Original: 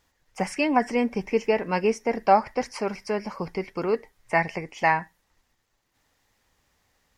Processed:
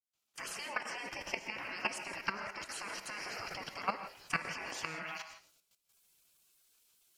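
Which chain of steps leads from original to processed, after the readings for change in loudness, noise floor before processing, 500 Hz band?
-14.0 dB, -72 dBFS, -23.0 dB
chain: opening faded in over 0.86 s; HPF 220 Hz 6 dB/oct; on a send: delay with a stepping band-pass 0.105 s, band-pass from 1200 Hz, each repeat 0.7 oct, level -6 dB; on the sum: compressor 16:1, threshold -30 dBFS, peak gain reduction 18.5 dB; spectral gate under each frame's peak -15 dB weak; level quantiser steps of 14 dB; non-linear reverb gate 0.19 s rising, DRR 9 dB; gain +13 dB

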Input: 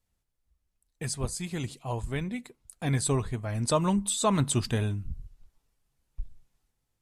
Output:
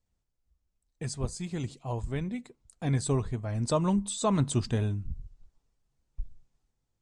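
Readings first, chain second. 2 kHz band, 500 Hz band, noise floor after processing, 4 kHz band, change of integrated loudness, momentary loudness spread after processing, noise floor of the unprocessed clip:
-5.5 dB, -1.0 dB, -80 dBFS, -5.0 dB, -1.5 dB, 17 LU, -80 dBFS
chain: LPF 7800 Hz 24 dB/oct; bell 2500 Hz -6 dB 2.7 oct

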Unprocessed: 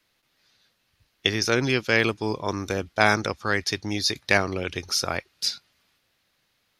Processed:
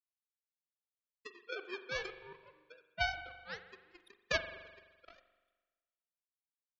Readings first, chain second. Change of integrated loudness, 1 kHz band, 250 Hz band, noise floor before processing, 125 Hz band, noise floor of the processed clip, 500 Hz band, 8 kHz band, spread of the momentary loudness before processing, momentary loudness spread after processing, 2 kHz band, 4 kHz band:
-15.0 dB, -17.5 dB, -29.0 dB, -71 dBFS, -25.0 dB, under -85 dBFS, -18.5 dB, -25.0 dB, 8 LU, 20 LU, -15.5 dB, -18.5 dB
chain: sine-wave speech; power-law curve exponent 3; spring tank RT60 1.3 s, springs 42 ms, chirp 50 ms, DRR 9.5 dB; gain -6 dB

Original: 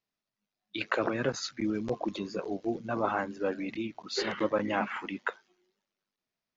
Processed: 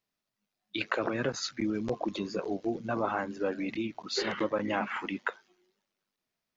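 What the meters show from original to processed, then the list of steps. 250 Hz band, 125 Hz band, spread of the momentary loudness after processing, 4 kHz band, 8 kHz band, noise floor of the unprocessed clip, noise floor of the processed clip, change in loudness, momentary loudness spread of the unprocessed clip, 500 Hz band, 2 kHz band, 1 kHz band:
0.0 dB, 0.0 dB, 5 LU, +1.5 dB, n/a, under -85 dBFS, under -85 dBFS, 0.0 dB, 7 LU, -0.5 dB, 0.0 dB, -0.5 dB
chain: compressor 2:1, threshold -31 dBFS, peak gain reduction 5 dB; gain +2.5 dB

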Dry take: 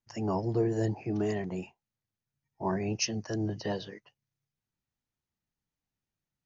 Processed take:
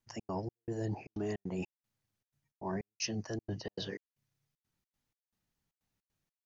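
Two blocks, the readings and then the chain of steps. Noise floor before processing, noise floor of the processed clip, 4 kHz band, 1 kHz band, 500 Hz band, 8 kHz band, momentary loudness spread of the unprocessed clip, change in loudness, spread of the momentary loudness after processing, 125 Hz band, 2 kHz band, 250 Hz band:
under -85 dBFS, under -85 dBFS, -4.5 dB, -7.5 dB, -8.0 dB, n/a, 11 LU, -7.5 dB, 5 LU, -7.0 dB, -5.5 dB, -7.5 dB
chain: reverse; compressor 5:1, threshold -39 dBFS, peak gain reduction 14 dB; reverse; step gate "xx.xx..xxxx." 155 bpm -60 dB; wow and flutter 19 cents; gain +4.5 dB

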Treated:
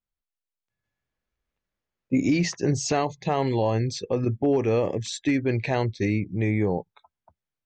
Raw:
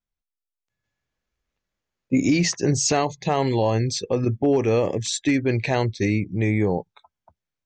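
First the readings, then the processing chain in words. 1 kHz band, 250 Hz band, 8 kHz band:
-2.5 dB, -2.5 dB, -8.0 dB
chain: high shelf 6100 Hz -10.5 dB; gain -2.5 dB

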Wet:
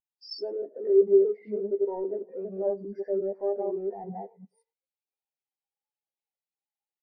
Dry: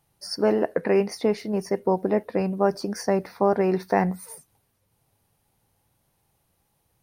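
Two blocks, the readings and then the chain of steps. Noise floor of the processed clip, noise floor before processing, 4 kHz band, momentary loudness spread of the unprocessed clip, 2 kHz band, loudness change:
under -85 dBFS, -71 dBFS, n/a, 6 LU, under -25 dB, -3.5 dB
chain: reverse delay 0.178 s, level -1.5 dB; treble ducked by the level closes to 1500 Hz, closed at -20.5 dBFS; HPF 310 Hz 12 dB/oct; band shelf 3300 Hz +8.5 dB; limiter -14.5 dBFS, peak gain reduction 7 dB; power-law curve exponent 0.5; doubler 15 ms -10 dB; speakerphone echo 0.1 s, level -8 dB; spectral expander 2.5:1

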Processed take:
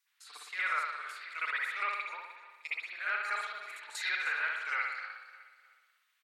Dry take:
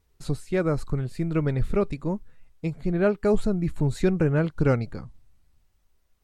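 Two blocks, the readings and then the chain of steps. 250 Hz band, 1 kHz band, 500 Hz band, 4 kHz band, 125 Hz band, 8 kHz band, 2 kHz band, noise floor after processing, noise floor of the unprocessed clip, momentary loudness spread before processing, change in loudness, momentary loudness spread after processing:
under -40 dB, +0.5 dB, -28.0 dB, +4.0 dB, under -40 dB, -2.5 dB, +6.5 dB, -76 dBFS, -68 dBFS, 10 LU, -8.5 dB, 15 LU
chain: HPF 1400 Hz 24 dB/oct; dynamic EQ 2000 Hz, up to +6 dB, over -57 dBFS, Q 7.4; level quantiser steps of 14 dB; on a send: feedback echo 0.305 s, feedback 39%, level -16 dB; on the sum: spring tank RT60 1 s, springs 56 ms, chirp 20 ms, DRR -10 dB; gain +2 dB

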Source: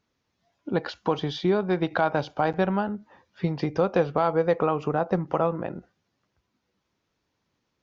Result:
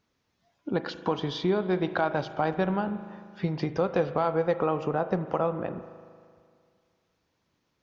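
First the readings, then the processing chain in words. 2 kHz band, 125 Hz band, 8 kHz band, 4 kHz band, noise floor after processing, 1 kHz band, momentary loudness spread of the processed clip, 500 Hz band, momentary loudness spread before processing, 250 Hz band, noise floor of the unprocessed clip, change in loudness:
-2.5 dB, -2.5 dB, n/a, -1.5 dB, -76 dBFS, -3.0 dB, 9 LU, -2.5 dB, 9 LU, -2.0 dB, -78 dBFS, -2.5 dB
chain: in parallel at 0 dB: compressor, threshold -32 dBFS, peak gain reduction 14.5 dB; on the sum: spring tank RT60 2.1 s, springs 38 ms, chirp 60 ms, DRR 11.5 dB; gain -5 dB

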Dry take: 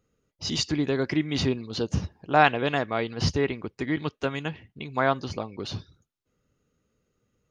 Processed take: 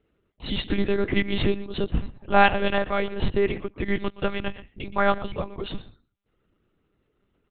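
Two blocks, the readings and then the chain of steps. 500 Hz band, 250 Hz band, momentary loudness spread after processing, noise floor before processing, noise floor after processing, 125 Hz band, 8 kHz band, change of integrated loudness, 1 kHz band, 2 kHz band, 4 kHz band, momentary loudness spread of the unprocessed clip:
+2.5 dB, +0.5 dB, 15 LU, -79 dBFS, -73 dBFS, -1.5 dB, under -40 dB, +1.5 dB, +1.5 dB, +1.5 dB, -1.0 dB, 13 LU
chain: in parallel at -7.5 dB: hard clip -15.5 dBFS, distortion -13 dB; on the sum: echo 0.122 s -16.5 dB; monotone LPC vocoder at 8 kHz 200 Hz

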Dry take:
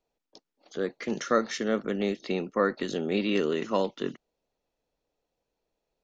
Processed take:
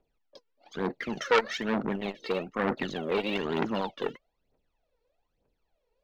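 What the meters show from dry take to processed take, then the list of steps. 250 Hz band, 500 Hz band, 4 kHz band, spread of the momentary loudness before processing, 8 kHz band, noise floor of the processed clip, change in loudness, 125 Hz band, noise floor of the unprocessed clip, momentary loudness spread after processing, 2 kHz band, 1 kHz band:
-3.0 dB, -2.0 dB, +1.0 dB, 7 LU, n/a, -79 dBFS, -1.5 dB, -1.0 dB, -85 dBFS, 9 LU, +2.5 dB, +1.5 dB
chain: LPF 3600 Hz 12 dB/oct; phaser 1.1 Hz, delay 2.3 ms, feedback 77%; core saturation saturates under 2000 Hz

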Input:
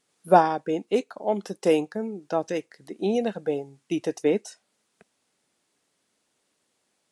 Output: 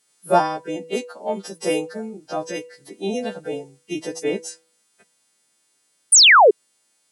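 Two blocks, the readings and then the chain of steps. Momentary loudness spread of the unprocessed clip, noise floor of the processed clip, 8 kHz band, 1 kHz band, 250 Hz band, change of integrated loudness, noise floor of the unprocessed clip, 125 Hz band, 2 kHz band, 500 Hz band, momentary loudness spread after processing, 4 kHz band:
13 LU, -66 dBFS, +26.0 dB, +5.5 dB, -1.0 dB, +8.5 dB, -74 dBFS, -1.0 dB, +18.0 dB, +2.5 dB, 22 LU, +23.5 dB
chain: frequency quantiser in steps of 2 st; de-hum 163.5 Hz, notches 27; painted sound fall, 6.12–6.51, 370–10000 Hz -10 dBFS

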